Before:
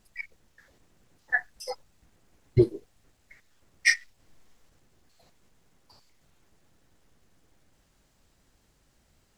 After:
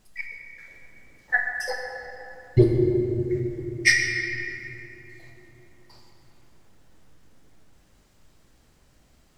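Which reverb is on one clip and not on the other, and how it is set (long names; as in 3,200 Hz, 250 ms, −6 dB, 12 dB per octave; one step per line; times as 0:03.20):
rectangular room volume 210 cubic metres, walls hard, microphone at 0.47 metres
level +3 dB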